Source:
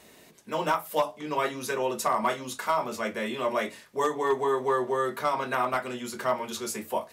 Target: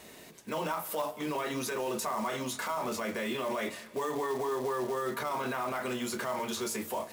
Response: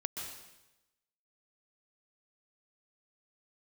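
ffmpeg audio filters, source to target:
-filter_complex "[0:a]alimiter=level_in=1.68:limit=0.0631:level=0:latency=1:release=27,volume=0.596,acrusher=bits=4:mode=log:mix=0:aa=0.000001,asplit=2[s0][s1];[1:a]atrim=start_sample=2205,asetrate=33516,aresample=44100[s2];[s1][s2]afir=irnorm=-1:irlink=0,volume=0.15[s3];[s0][s3]amix=inputs=2:normalize=0,volume=1.19"

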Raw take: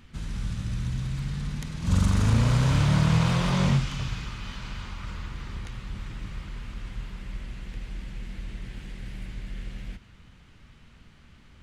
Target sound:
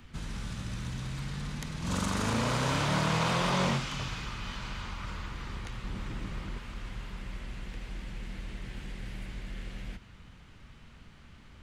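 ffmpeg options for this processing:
-filter_complex "[0:a]asettb=1/sr,asplit=3[s0][s1][s2];[s0]atrim=end=5.844[s3];[s1]atrim=start=5.84:end=6.58,asetpts=PTS-STARTPTS,afade=t=in:d=0.004:c=qsin,afade=t=out:st=0.736:d=0.004:c=qsin,lowshelf=f=410:g=9.5[s4];[s2]atrim=start=6.576[s5];[s3][s4]acrossfade=d=0.004:c1=hsin:c2=qsin[s6];[s6][s5]acrossfade=d=0.004:c1=qsin:c2=hsin,acrossover=split=220|1100|1900[s7][s8][s9][s10];[s7]acompressor=threshold=0.0158:ratio=6[s11];[s8]crystalizer=i=8.5:c=0[s12];[s11][s12][s9][s10]amix=inputs=4:normalize=0"

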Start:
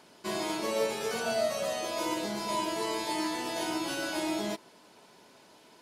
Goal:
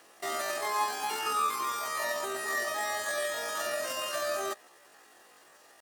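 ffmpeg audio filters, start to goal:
-filter_complex "[0:a]acrossover=split=9700[s0][s1];[s1]acompressor=threshold=0.00112:ratio=4:attack=1:release=60[s2];[s0][s2]amix=inputs=2:normalize=0,asetrate=83250,aresample=44100,atempo=0.529732"

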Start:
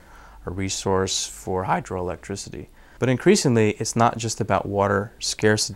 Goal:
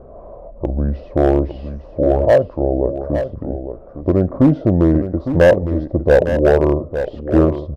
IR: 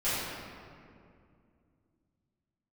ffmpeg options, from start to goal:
-filter_complex "[0:a]asplit=2[s0][s1];[s1]acompressor=threshold=0.0398:ratio=6,volume=0.794[s2];[s0][s2]amix=inputs=2:normalize=0,lowpass=f=760:t=q:w=4.7,asoftclip=type=hard:threshold=0.501,asetrate=32667,aresample=44100,equalizer=f=68:w=4:g=8,asplit=2[s3][s4];[s4]aecho=0:1:858:0.316[s5];[s3][s5]amix=inputs=2:normalize=0,volume=1.12"

